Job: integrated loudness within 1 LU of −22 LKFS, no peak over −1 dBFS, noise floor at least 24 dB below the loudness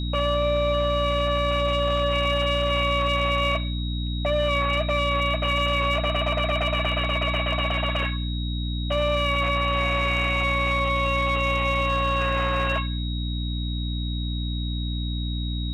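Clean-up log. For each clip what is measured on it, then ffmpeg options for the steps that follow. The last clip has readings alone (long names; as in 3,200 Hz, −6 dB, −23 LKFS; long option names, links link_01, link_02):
mains hum 60 Hz; hum harmonics up to 300 Hz; level of the hum −25 dBFS; interfering tone 3,800 Hz; level of the tone −35 dBFS; integrated loudness −24.0 LKFS; sample peak −14.0 dBFS; target loudness −22.0 LKFS
→ -af "bandreject=frequency=60:width_type=h:width=4,bandreject=frequency=120:width_type=h:width=4,bandreject=frequency=180:width_type=h:width=4,bandreject=frequency=240:width_type=h:width=4,bandreject=frequency=300:width_type=h:width=4"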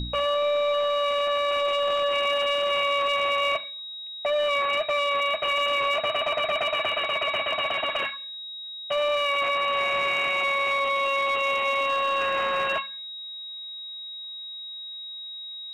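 mains hum none found; interfering tone 3,800 Hz; level of the tone −35 dBFS
→ -af "bandreject=frequency=3800:width=30"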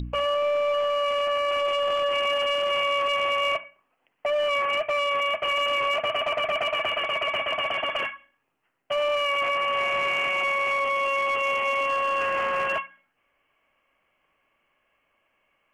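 interfering tone none found; integrated loudness −24.5 LKFS; sample peak −19.0 dBFS; target loudness −22.0 LKFS
→ -af "volume=2.5dB"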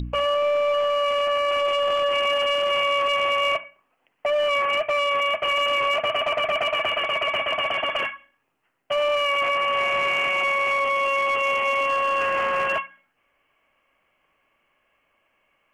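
integrated loudness −22.0 LKFS; sample peak −16.5 dBFS; background noise floor −71 dBFS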